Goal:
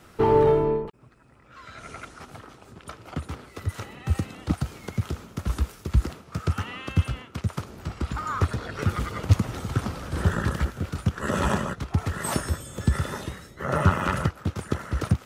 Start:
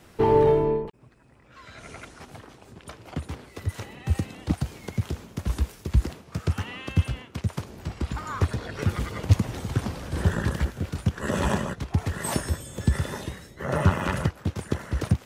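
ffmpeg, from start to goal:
ffmpeg -i in.wav -af "equalizer=frequency=1300:width_type=o:width=0.26:gain=8.5" out.wav

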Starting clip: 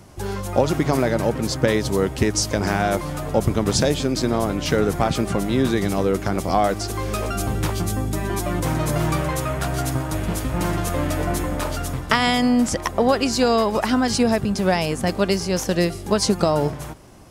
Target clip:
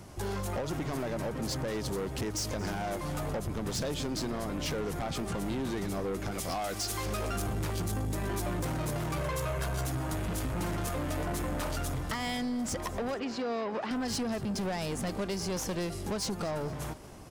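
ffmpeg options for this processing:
ffmpeg -i in.wav -filter_complex "[0:a]asettb=1/sr,asplit=3[link_01][link_02][link_03];[link_01]atrim=end=6.314[link_04];[link_02]atrim=start=6.31:end=7.06,asetpts=PTS-STARTPTS,afade=type=in:duration=0.004:curve=qsin,afade=type=out:start_time=0.746:duration=0.004:curve=qsin,tiltshelf=frequency=1400:gain=-6[link_05];[link_03]atrim=start=7.056[link_06];[link_04][link_05]acrossfade=duration=0.004:curve1=hsin:curve2=qsin[link_07];[link_07][link_06]acrossfade=duration=0.004:curve1=qsin:curve2=hsin,asettb=1/sr,asplit=3[link_08][link_09][link_10];[link_08]atrim=end=9.174[link_11];[link_09]atrim=start=9.17:end=9.87,asetpts=PTS-STARTPTS,afade=type=in:duration=0.004:curve=qsin,afade=type=out:start_time=0.696:duration=0.004:curve=qsin,aecho=1:1:1.9:0.88,atrim=end_sample=30870[link_12];[link_10]atrim=start=9.866[link_13];[link_11][link_12]acrossfade=duration=0.004:curve1=hsin:curve2=qsin[link_14];[link_14][link_13]acrossfade=duration=0.004:curve1=qsin:curve2=hsin,acompressor=threshold=-22dB:ratio=6,asoftclip=type=tanh:threshold=-26.5dB,asettb=1/sr,asplit=3[link_15][link_16][link_17];[link_15]atrim=end=13.144[link_18];[link_16]atrim=start=13.14:end=13.91,asetpts=PTS-STARTPTS,afade=type=in:duration=0.004:curve=qsin,afade=type=out:start_time=0.766:duration=0.004:curve=qsin,highpass=200,lowpass=3200[link_19];[link_17]atrim=start=13.906[link_20];[link_18][link_19]acrossfade=duration=0.004:curve1=hsin:curve2=qsin[link_21];[link_21][link_20]acrossfade=duration=0.004:curve1=qsin:curve2=hsin,aecho=1:1:230|460|690:0.0944|0.0444|0.0209,volume=-2.5dB" out.wav

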